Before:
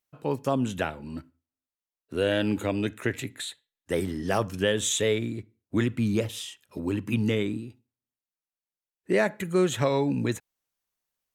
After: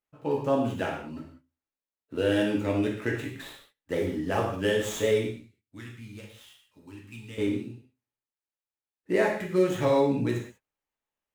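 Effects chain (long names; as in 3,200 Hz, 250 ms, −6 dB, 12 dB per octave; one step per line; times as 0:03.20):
running median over 9 samples
0:05.27–0:07.38: guitar amp tone stack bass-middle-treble 5-5-5
reverb whose tail is shaped and stops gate 220 ms falling, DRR −2.5 dB
level −4.5 dB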